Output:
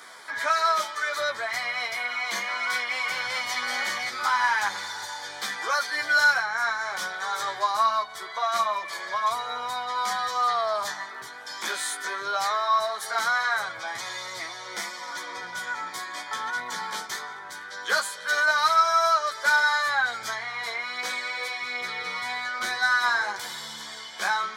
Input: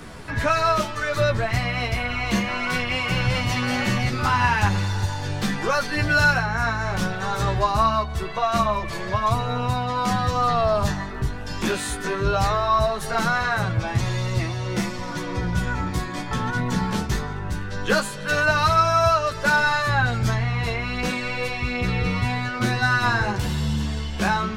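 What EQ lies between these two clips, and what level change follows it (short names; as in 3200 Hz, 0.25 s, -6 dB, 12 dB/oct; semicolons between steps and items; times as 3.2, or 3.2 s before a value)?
HPF 950 Hz 12 dB/oct; Butterworth band-stop 2700 Hz, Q 5.1; 0.0 dB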